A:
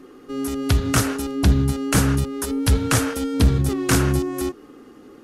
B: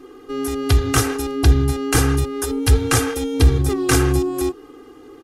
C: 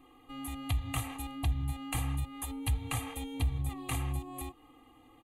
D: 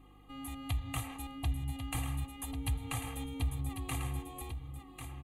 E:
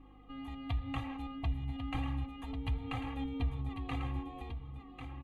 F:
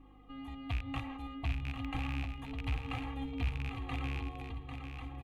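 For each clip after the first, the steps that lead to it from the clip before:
comb 2.5 ms, depth 85%
compressor 2.5:1, threshold -21 dBFS, peak gain reduction 9.5 dB; fixed phaser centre 1500 Hz, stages 6; gain -8.5 dB
hum 50 Hz, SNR 22 dB; on a send: echo 1.095 s -8.5 dB; on the sum: gain -3 dB
flange 0.96 Hz, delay 3.5 ms, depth 1.2 ms, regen +40%; air absorption 260 m; gain +5.5 dB
rattling part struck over -34 dBFS, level -29 dBFS; feedback echo 0.797 s, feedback 24%, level -7.5 dB; gain -1 dB

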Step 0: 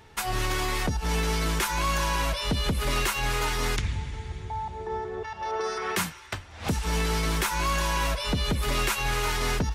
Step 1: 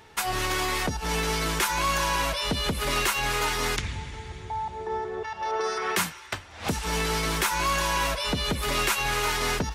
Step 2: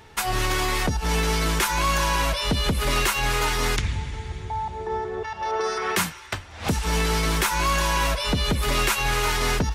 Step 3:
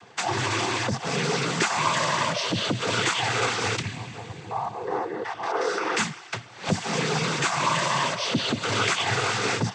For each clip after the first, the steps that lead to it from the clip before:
low shelf 170 Hz -8.5 dB; gain +2.5 dB
low shelf 140 Hz +7 dB; gain +2 dB
noise vocoder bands 16

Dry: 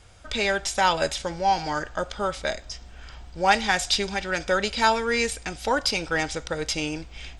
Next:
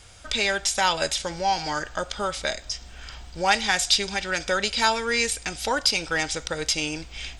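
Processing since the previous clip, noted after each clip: high shelf 2100 Hz +8.5 dB; in parallel at -1 dB: compressor, threshold -29 dBFS, peak gain reduction 17 dB; on the sum: gain -5 dB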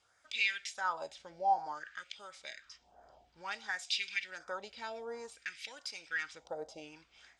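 wah 0.56 Hz 670–2500 Hz, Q 3.7; phaser stages 2, 1.4 Hz, lowest notch 660–2600 Hz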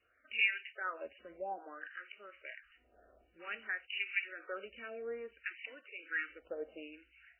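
fixed phaser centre 360 Hz, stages 4; gain +3.5 dB; MP3 8 kbps 8000 Hz

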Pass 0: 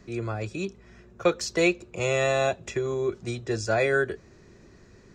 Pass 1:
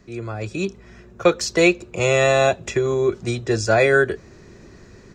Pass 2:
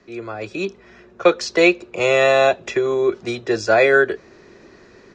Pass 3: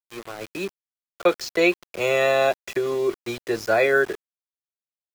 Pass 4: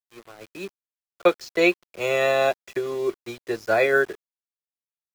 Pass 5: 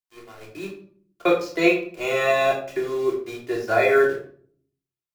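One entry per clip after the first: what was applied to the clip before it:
AGC gain up to 8 dB
three-band isolator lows -14 dB, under 250 Hz, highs -21 dB, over 5800 Hz; gain +2.5 dB
sample gate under -28.5 dBFS; gain -5 dB
upward expander 1.5:1, over -40 dBFS; gain +1.5 dB
shoebox room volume 610 m³, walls furnished, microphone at 3.2 m; gain -3.5 dB

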